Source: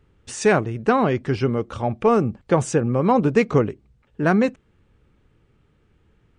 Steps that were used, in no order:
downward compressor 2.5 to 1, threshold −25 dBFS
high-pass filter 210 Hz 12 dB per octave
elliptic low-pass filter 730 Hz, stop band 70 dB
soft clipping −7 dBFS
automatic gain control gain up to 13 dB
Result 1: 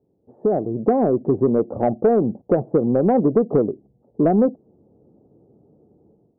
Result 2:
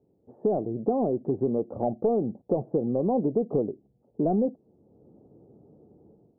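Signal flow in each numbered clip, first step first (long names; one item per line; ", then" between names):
high-pass filter, then downward compressor, then elliptic low-pass filter, then automatic gain control, then soft clipping
automatic gain control, then high-pass filter, then soft clipping, then elliptic low-pass filter, then downward compressor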